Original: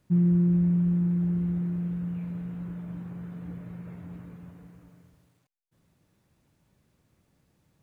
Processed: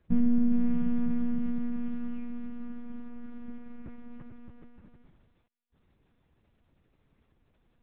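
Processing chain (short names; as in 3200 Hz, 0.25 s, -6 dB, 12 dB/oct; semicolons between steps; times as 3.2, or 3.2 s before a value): monotone LPC vocoder at 8 kHz 240 Hz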